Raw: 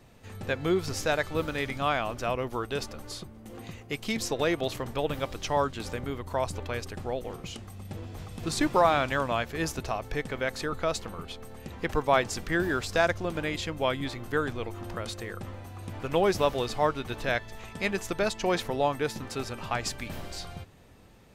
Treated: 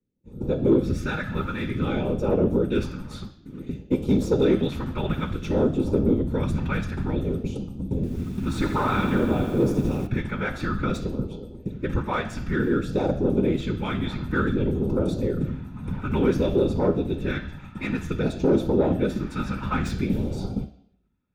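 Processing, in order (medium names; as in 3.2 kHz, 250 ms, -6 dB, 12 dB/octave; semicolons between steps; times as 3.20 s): expander -36 dBFS; gain riding within 5 dB 2 s; phase shifter stages 2, 0.55 Hz, lowest notch 370–1700 Hz; whisper effect; saturation -26 dBFS, distortion -13 dB; reverberation RT60 0.70 s, pre-delay 3 ms, DRR 6.5 dB; 7.95–10.07 s: bit-crushed delay 82 ms, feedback 80%, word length 7-bit, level -9.5 dB; trim -4 dB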